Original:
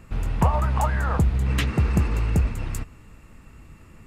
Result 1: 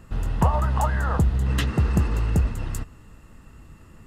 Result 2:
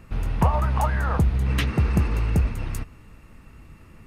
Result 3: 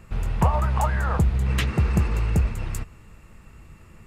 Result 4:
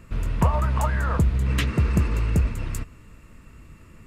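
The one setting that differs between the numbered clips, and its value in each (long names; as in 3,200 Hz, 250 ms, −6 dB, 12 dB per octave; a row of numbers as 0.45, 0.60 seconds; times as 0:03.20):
notch filter, centre frequency: 2,300, 7,400, 270, 790 Hertz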